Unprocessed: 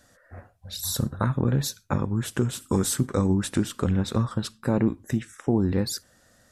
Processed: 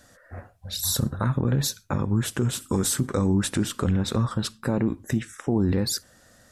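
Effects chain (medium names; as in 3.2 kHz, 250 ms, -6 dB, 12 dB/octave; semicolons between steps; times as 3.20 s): peak limiter -18.5 dBFS, peak gain reduction 6.5 dB; trim +4 dB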